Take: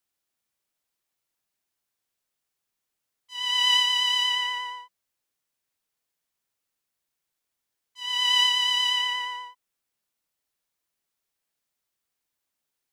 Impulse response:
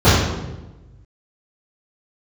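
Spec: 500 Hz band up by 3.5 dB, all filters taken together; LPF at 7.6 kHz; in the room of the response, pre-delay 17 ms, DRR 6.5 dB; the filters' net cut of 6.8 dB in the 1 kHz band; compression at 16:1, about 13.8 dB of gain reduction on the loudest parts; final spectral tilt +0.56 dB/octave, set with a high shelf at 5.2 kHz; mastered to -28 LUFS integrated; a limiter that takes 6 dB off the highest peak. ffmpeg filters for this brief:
-filter_complex "[0:a]lowpass=7600,equalizer=f=500:t=o:g=5,equalizer=f=1000:t=o:g=-8,highshelf=f=5200:g=7.5,acompressor=threshold=0.0316:ratio=16,alimiter=level_in=1.58:limit=0.0631:level=0:latency=1,volume=0.631,asplit=2[s0][s1];[1:a]atrim=start_sample=2205,adelay=17[s2];[s1][s2]afir=irnorm=-1:irlink=0,volume=0.02[s3];[s0][s3]amix=inputs=2:normalize=0,volume=2.11"

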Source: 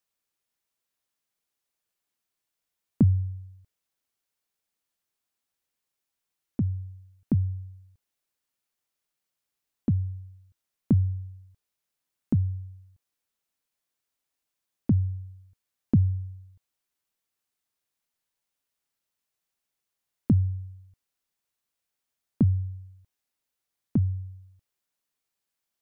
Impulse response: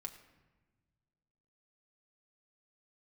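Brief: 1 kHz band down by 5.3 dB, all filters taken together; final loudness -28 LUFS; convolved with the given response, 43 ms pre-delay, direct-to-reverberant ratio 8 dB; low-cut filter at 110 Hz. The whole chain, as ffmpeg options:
-filter_complex "[0:a]highpass=110,equalizer=f=1000:t=o:g=-7.5,asplit=2[s0][s1];[1:a]atrim=start_sample=2205,adelay=43[s2];[s1][s2]afir=irnorm=-1:irlink=0,volume=0.596[s3];[s0][s3]amix=inputs=2:normalize=0,volume=1.19"

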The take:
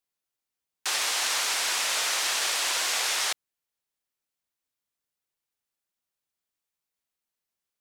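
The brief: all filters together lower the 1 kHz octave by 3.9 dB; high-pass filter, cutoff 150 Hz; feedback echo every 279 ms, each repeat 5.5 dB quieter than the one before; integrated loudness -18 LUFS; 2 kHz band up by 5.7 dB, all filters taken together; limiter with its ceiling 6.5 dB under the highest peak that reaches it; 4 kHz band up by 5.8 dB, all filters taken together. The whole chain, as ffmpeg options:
-af "highpass=150,equalizer=f=1000:t=o:g=-8.5,equalizer=f=2000:t=o:g=7.5,equalizer=f=4000:t=o:g=5.5,alimiter=limit=0.15:level=0:latency=1,aecho=1:1:279|558|837|1116|1395|1674|1953:0.531|0.281|0.149|0.079|0.0419|0.0222|0.0118,volume=1.78"

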